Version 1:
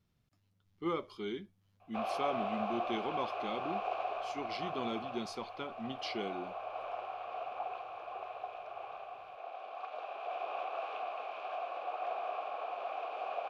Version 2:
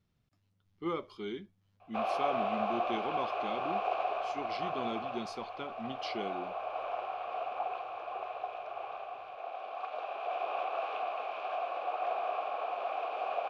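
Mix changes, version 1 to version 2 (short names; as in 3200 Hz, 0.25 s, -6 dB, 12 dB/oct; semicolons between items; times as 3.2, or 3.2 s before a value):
background +4.0 dB; master: add high shelf 10000 Hz -9 dB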